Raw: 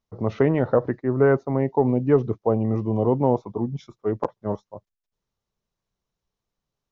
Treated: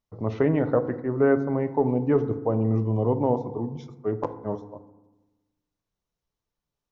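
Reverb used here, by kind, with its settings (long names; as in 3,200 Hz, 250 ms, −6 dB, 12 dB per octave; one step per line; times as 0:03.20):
feedback delay network reverb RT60 1.1 s, low-frequency decay 1.25×, high-frequency decay 0.35×, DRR 9.5 dB
level −3.5 dB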